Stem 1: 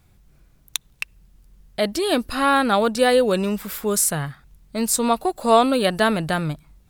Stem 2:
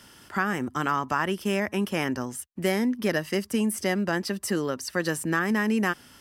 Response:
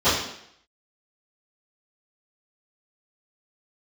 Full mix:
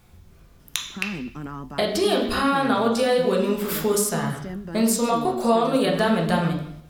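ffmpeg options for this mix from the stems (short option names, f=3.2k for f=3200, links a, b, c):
-filter_complex "[0:a]bandreject=f=58.78:t=h:w=4,bandreject=f=117.56:t=h:w=4,bandreject=f=176.34:t=h:w=4,bandreject=f=235.12:t=h:w=4,bandreject=f=293.9:t=h:w=4,bandreject=f=352.68:t=h:w=4,bandreject=f=411.46:t=h:w=4,acompressor=threshold=-26dB:ratio=6,volume=3dB,asplit=2[a][b];[b]volume=-18.5dB[c];[1:a]equalizer=f=180:w=0.45:g=15,alimiter=limit=-12.5dB:level=0:latency=1,flanger=delay=6.4:depth=8.7:regen=-61:speed=0.51:shape=triangular,adelay=600,volume=-9dB[d];[2:a]atrim=start_sample=2205[e];[c][e]afir=irnorm=-1:irlink=0[f];[a][d][f]amix=inputs=3:normalize=0"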